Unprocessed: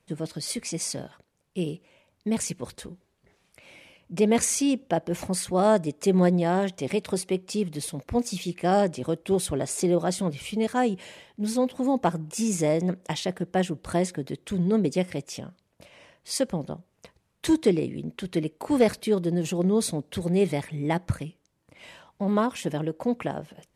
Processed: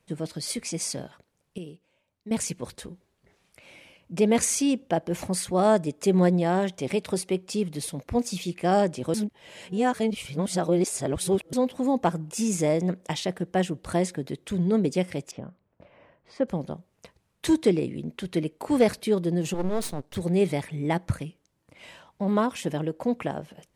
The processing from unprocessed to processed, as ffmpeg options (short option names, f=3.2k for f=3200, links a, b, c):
-filter_complex "[0:a]asettb=1/sr,asplit=3[a][b][c];[a]atrim=end=15.314[d];[b]atrim=start=15.31:end=16.48,asetpts=PTS-STARTPTS,afade=t=in:d=0.004:c=qsin,afade=t=out:st=1.166:d=0.004:c=qsin,lowpass=1.5k[e];[c]atrim=start=16.476[f];[d][e]acrossfade=d=0.004:c1=hsin:c2=qsin[g];[g][f]acrossfade=d=0.004:c1=qsin:c2=hsin,asettb=1/sr,asplit=3[h][i][j];[h]atrim=end=19.544[k];[i]atrim=start=19.54:end=20.16,asetpts=PTS-STARTPTS,afade=t=in:d=0.004:c=qsin,afade=t=out:st=0.616:d=0.004:c=qsin,aeval=exprs='max(val(0),0)':c=same[l];[j]atrim=start=20.156[m];[k][l]acrossfade=d=0.004:c1=hsin:c2=qsin[n];[n][m]acrossfade=d=0.004:c1=qsin:c2=hsin,asplit=5[o][p][q][r][s];[o]atrim=end=1.582[t];[p]atrim=start=1.578:end=2.312,asetpts=PTS-STARTPTS,volume=-11dB[u];[q]atrim=start=2.308:end=9.142[v];[r]atrim=start=9.138:end=11.532,asetpts=PTS-STARTPTS,areverse[w];[s]atrim=start=11.528[x];[t][u]acrossfade=d=0.004:c1=hsin:c2=hsin[y];[y][v]acrossfade=d=0.004:c1=hsin:c2=hsin[z];[z][w]acrossfade=d=0.004:c1=hsin:c2=hsin[aa];[aa][x]acrossfade=d=0.004:c1=hsin:c2=hsin"